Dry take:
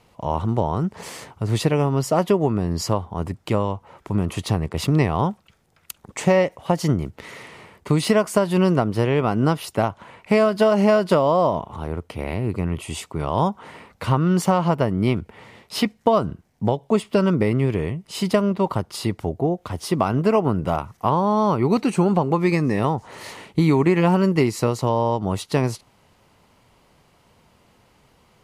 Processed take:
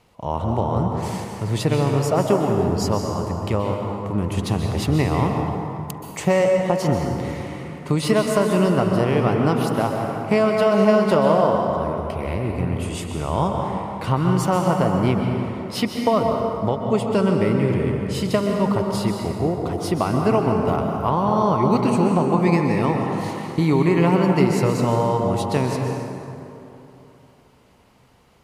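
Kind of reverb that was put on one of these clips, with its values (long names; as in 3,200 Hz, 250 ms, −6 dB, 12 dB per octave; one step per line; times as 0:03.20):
dense smooth reverb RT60 3.1 s, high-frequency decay 0.5×, pre-delay 115 ms, DRR 1.5 dB
level −1.5 dB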